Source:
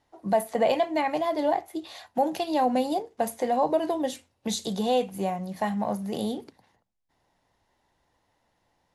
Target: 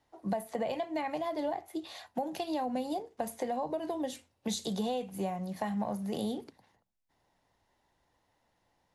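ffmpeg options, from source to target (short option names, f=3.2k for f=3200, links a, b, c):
-filter_complex "[0:a]acrossover=split=170[a][b];[b]acompressor=threshold=-28dB:ratio=6[c];[a][c]amix=inputs=2:normalize=0,volume=-3dB"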